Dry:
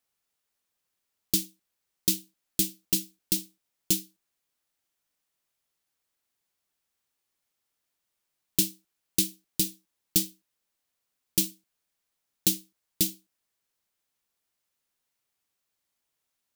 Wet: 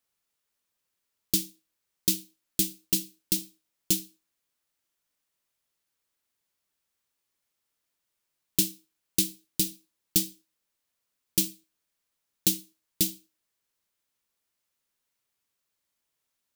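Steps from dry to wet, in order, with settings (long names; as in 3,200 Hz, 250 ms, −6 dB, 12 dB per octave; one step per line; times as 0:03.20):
notch filter 760 Hz, Q 12
on a send: convolution reverb RT60 0.30 s, pre-delay 61 ms, DRR 23 dB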